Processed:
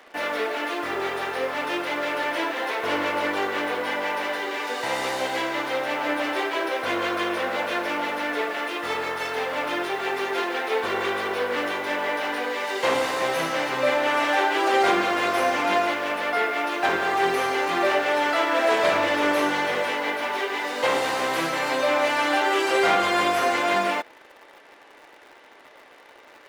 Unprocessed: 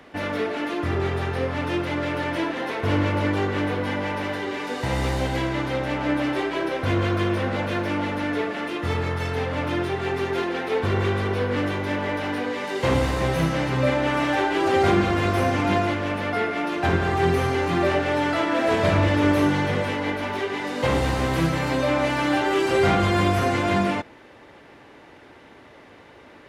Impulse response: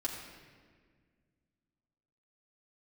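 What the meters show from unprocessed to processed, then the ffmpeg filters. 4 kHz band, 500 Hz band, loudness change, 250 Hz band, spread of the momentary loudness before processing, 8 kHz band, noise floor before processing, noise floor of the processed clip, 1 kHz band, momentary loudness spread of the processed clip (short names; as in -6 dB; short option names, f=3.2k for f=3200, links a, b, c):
+3.0 dB, -0.5 dB, -0.5 dB, -7.0 dB, 7 LU, +3.0 dB, -48 dBFS, -50 dBFS, +2.5 dB, 6 LU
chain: -filter_complex "[0:a]highpass=510,asplit=2[a][b];[b]acrusher=bits=6:mix=0:aa=0.000001,volume=-8dB[c];[a][c]amix=inputs=2:normalize=0"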